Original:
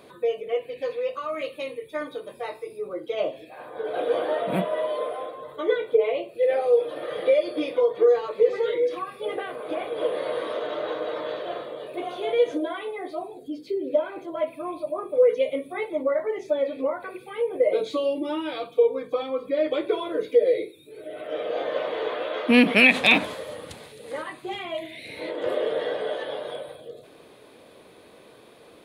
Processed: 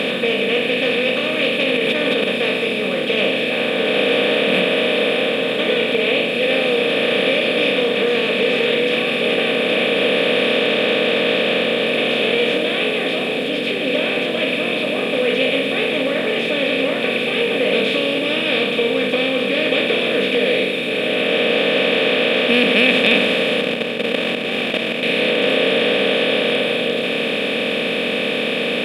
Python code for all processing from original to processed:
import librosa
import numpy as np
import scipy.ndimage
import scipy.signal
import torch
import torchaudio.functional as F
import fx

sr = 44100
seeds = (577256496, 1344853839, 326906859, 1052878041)

y = fx.chain(x, sr, fx.highpass(hz=160.0, slope=24),
    fx.high_shelf(hz=4800.0, db=-9.0),
    fx.sustainer(db_per_s=24.0), at=(1.63, 2.24))
y = fx.chain(y, sr, fx.median_filter(points=25),
    fx.level_steps(step_db=15), at=(23.61, 25.03))
y = fx.bin_compress(y, sr, power=0.2)
y = fx.graphic_eq_31(y, sr, hz=(200, 1000, 1600, 3150), db=(4, -6, 5, 10))
y = y * librosa.db_to_amplitude(-6.5)